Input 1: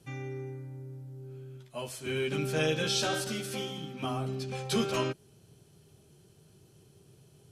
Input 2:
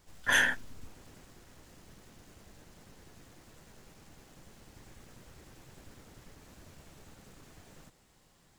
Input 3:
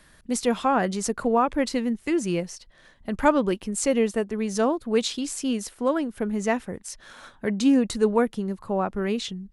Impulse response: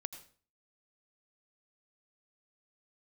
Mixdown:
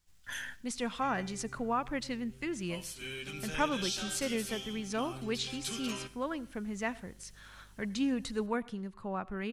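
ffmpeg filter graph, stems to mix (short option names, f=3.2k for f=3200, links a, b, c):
-filter_complex "[0:a]highpass=190,aeval=exprs='val(0)+0.00158*(sin(2*PI*50*n/s)+sin(2*PI*2*50*n/s)/2+sin(2*PI*3*50*n/s)/3+sin(2*PI*4*50*n/s)/4+sin(2*PI*5*50*n/s)/5)':c=same,adelay=950,volume=-2.5dB,asplit=2[a][b];[b]volume=-7dB[c];[1:a]volume=-11dB,asplit=2[d][e];[e]volume=-10dB[f];[2:a]lowpass=f=2.2k:p=1,lowshelf=f=170:g=-7,adelay=350,volume=-2.5dB,asplit=2[g][h];[h]volume=-6dB[i];[a][d]amix=inputs=2:normalize=0,alimiter=level_in=4dB:limit=-24dB:level=0:latency=1:release=102,volume=-4dB,volume=0dB[j];[3:a]atrim=start_sample=2205[k];[c][f][i]amix=inputs=3:normalize=0[l];[l][k]afir=irnorm=-1:irlink=0[m];[g][j][m]amix=inputs=3:normalize=0,equalizer=f=480:t=o:w=2.9:g=-13.5"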